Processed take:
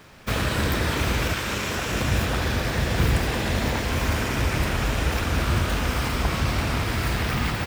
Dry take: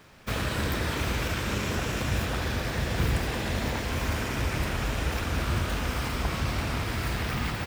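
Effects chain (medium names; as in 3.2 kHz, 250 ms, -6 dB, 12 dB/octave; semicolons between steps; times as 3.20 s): 1.33–1.91 s: bass shelf 400 Hz -7 dB; trim +5 dB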